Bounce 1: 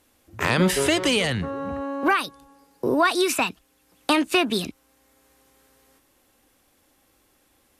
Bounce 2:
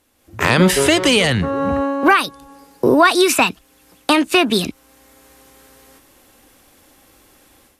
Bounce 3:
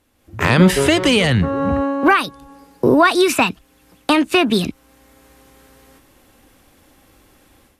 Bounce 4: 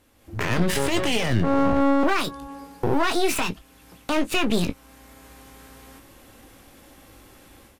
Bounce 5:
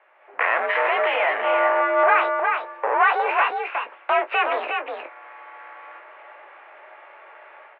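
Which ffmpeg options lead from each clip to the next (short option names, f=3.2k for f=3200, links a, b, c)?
-af "dynaudnorm=f=150:g=3:m=12dB"
-af "bass=f=250:g=5,treble=f=4k:g=-4,volume=-1dB"
-filter_complex "[0:a]alimiter=limit=-13.5dB:level=0:latency=1:release=110,aeval=exprs='clip(val(0),-1,0.0158)':c=same,asplit=2[a][b];[b]aecho=0:1:18|29:0.316|0.141[c];[a][c]amix=inputs=2:normalize=0,volume=2dB"
-af "aecho=1:1:361:0.473,aeval=exprs='0.501*(cos(1*acos(clip(val(0)/0.501,-1,1)))-cos(1*PI/2))+0.0562*(cos(5*acos(clip(val(0)/0.501,-1,1)))-cos(5*PI/2))':c=same,highpass=f=550:t=q:w=0.5412,highpass=f=550:t=q:w=1.307,lowpass=f=2.3k:t=q:w=0.5176,lowpass=f=2.3k:t=q:w=0.7071,lowpass=f=2.3k:t=q:w=1.932,afreqshift=65,volume=6dB"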